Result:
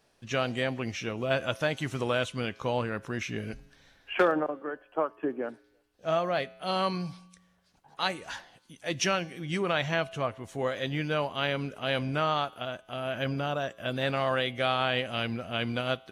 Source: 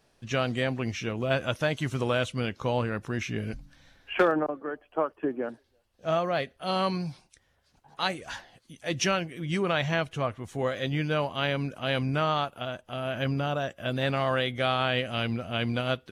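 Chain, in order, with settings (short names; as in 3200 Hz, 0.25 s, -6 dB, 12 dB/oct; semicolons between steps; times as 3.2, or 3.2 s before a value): low shelf 180 Hz -5.5 dB; resonator 60 Hz, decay 1.1 s, harmonics odd, mix 40%; gain +3.5 dB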